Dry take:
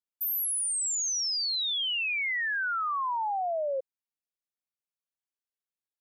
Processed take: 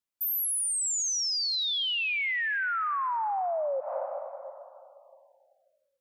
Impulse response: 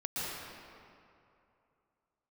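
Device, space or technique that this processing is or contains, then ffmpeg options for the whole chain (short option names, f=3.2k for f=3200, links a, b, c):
ducked reverb: -filter_complex "[0:a]asplit=3[a][b][c];[1:a]atrim=start_sample=2205[d];[b][d]afir=irnorm=-1:irlink=0[e];[c]apad=whole_len=264971[f];[e][f]sidechaincompress=threshold=-45dB:ratio=8:attack=16:release=112,volume=-5.5dB[g];[a][g]amix=inputs=2:normalize=0"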